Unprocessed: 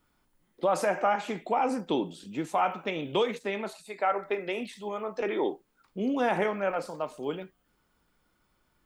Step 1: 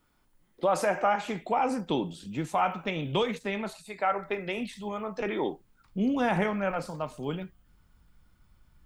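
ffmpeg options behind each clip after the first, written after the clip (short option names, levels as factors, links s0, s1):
-af "asubboost=boost=6:cutoff=150,volume=1.12"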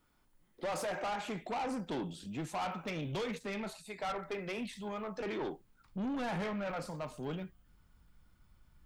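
-af "asoftclip=type=tanh:threshold=0.0316,volume=0.708"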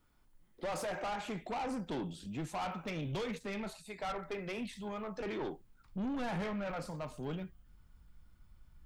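-af "lowshelf=f=100:g=7.5,volume=0.841"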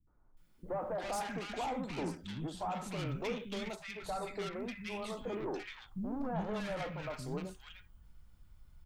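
-filter_complex "[0:a]acrossover=split=240|1400[s0][s1][s2];[s1]adelay=70[s3];[s2]adelay=370[s4];[s0][s3][s4]amix=inputs=3:normalize=0,volume=1.19"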